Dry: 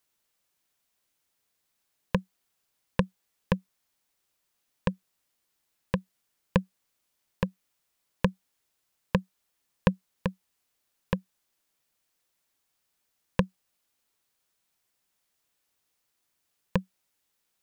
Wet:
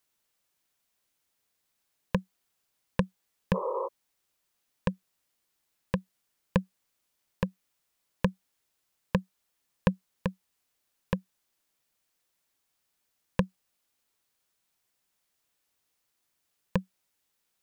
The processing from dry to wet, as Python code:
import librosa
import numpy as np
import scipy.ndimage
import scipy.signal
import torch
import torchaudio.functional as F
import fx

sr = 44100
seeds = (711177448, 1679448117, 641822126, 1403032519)

p1 = fx.spec_repair(x, sr, seeds[0], start_s=3.57, length_s=0.28, low_hz=350.0, high_hz=1300.0, source='before')
p2 = 10.0 ** (-14.5 / 20.0) * np.tanh(p1 / 10.0 ** (-14.5 / 20.0))
p3 = p1 + F.gain(torch.from_numpy(p2), -5.0).numpy()
y = F.gain(torch.from_numpy(p3), -4.5).numpy()